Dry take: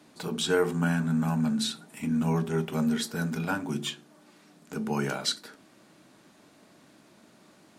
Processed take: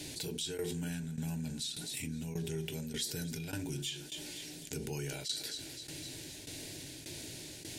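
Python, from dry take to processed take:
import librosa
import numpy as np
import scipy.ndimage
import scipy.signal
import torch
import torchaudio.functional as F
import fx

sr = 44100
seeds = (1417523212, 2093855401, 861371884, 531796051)

y = fx.tone_stack(x, sr, knobs='6-0-2')
y = fx.wow_flutter(y, sr, seeds[0], rate_hz=2.1, depth_cents=19.0)
y = fx.low_shelf(y, sr, hz=360.0, db=3.0)
y = fx.fixed_phaser(y, sr, hz=500.0, stages=4)
y = fx.echo_thinned(y, sr, ms=257, feedback_pct=40, hz=420.0, wet_db=-20.5)
y = fx.tremolo_shape(y, sr, shape='saw_down', hz=1.7, depth_pct=90)
y = fx.env_flatten(y, sr, amount_pct=70)
y = F.gain(torch.from_numpy(y), 11.0).numpy()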